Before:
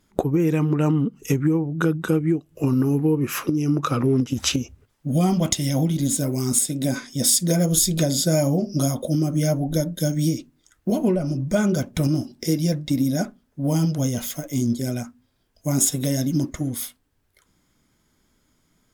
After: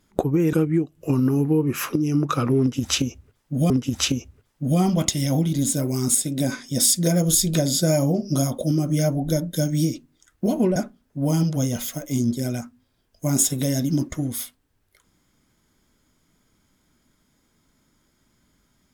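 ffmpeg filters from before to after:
ffmpeg -i in.wav -filter_complex "[0:a]asplit=4[link_01][link_02][link_03][link_04];[link_01]atrim=end=0.532[link_05];[link_02]atrim=start=2.068:end=5.242[link_06];[link_03]atrim=start=4.138:end=11.202[link_07];[link_04]atrim=start=13.178[link_08];[link_05][link_06]acrossfade=duration=0.004:curve1=hsin:curve2=hsin[link_09];[link_09][link_07]acrossfade=duration=0.004:curve1=hsin:curve2=hsin[link_10];[link_10][link_08]acrossfade=duration=0.004:curve1=hsin:curve2=hsin" out.wav

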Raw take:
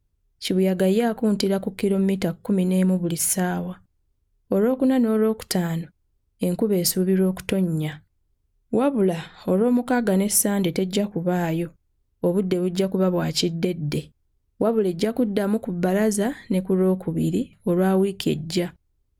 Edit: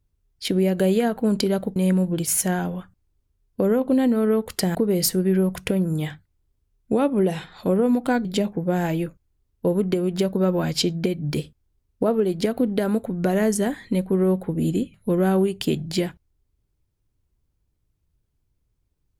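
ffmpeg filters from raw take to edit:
ffmpeg -i in.wav -filter_complex "[0:a]asplit=4[link_01][link_02][link_03][link_04];[link_01]atrim=end=1.762[link_05];[link_02]atrim=start=2.678:end=5.672[link_06];[link_03]atrim=start=6.568:end=10.072[link_07];[link_04]atrim=start=10.838[link_08];[link_05][link_06]acrossfade=duration=0.004:curve1=hsin:curve2=hsin[link_09];[link_09][link_07]acrossfade=duration=0.004:curve1=hsin:curve2=hsin[link_10];[link_10][link_08]acrossfade=duration=0.004:curve1=hsin:curve2=hsin" out.wav

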